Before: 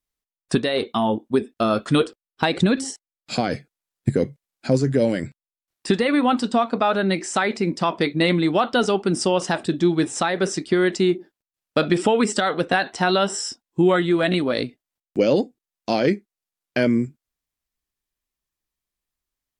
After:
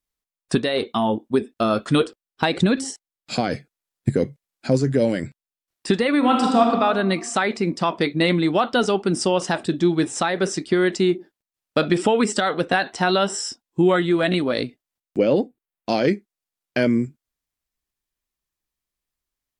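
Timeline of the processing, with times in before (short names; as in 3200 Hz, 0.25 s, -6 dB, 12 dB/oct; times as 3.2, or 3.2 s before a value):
6.18–6.63 reverb throw, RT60 1.4 s, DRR -0.5 dB
15.18–15.89 bell 5900 Hz -14 dB 1 oct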